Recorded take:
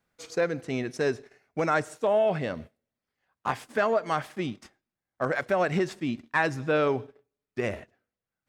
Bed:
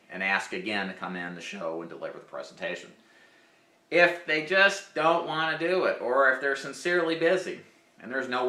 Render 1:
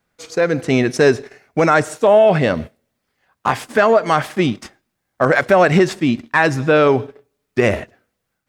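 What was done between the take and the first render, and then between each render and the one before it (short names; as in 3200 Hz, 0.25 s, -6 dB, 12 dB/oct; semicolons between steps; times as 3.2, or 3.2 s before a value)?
in parallel at +1 dB: limiter -20 dBFS, peak gain reduction 9 dB; on the sum: AGC gain up to 11.5 dB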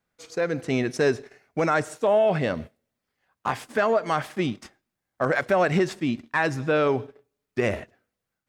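gain -9 dB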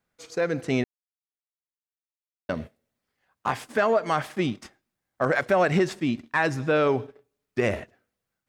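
0.84–2.49 mute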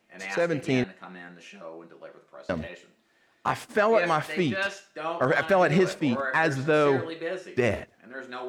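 add bed -8.5 dB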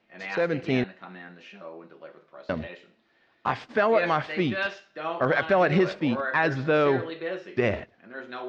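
LPF 4700 Hz 24 dB/oct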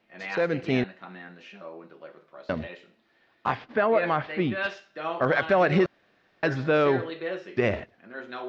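3.55–4.64 air absorption 220 m; 5.86–6.43 room tone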